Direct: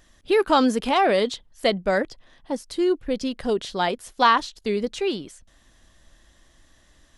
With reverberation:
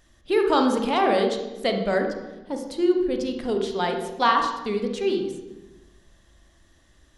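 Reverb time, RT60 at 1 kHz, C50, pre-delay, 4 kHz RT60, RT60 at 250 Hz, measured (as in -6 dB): 1.1 s, 0.95 s, 5.5 dB, 25 ms, 0.75 s, 1.4 s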